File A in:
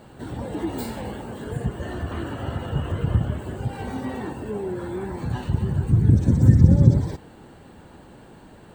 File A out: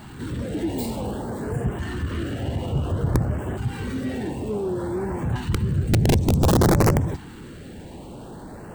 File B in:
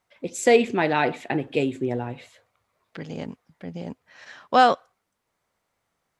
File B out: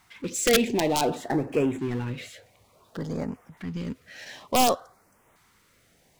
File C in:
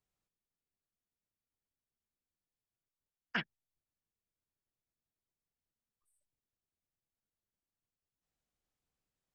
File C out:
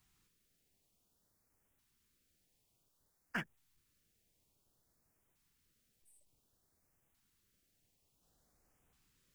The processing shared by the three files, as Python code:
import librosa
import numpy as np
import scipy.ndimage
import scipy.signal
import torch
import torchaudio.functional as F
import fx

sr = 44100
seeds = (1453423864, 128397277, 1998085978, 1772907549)

y = fx.power_curve(x, sr, exponent=0.7)
y = (np.mod(10.0 ** (7.0 / 20.0) * y + 1.0, 2.0) - 1.0) / 10.0 ** (7.0 / 20.0)
y = fx.filter_lfo_notch(y, sr, shape='saw_up', hz=0.56, low_hz=490.0, high_hz=4900.0, q=0.82)
y = y * librosa.db_to_amplitude(-4.5)